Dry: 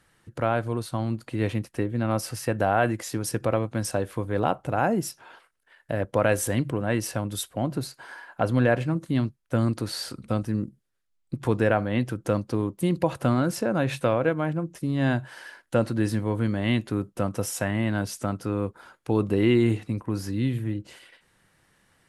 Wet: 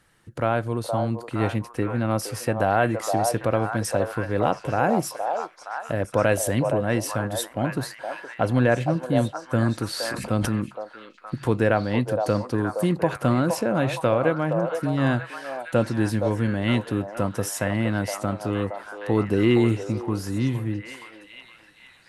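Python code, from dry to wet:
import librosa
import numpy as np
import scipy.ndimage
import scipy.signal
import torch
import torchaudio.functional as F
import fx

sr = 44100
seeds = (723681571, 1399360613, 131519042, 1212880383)

y = fx.echo_stepped(x, sr, ms=467, hz=700.0, octaves=0.7, feedback_pct=70, wet_db=-2)
y = fx.sustainer(y, sr, db_per_s=28.0, at=(9.98, 10.49))
y = F.gain(torch.from_numpy(y), 1.5).numpy()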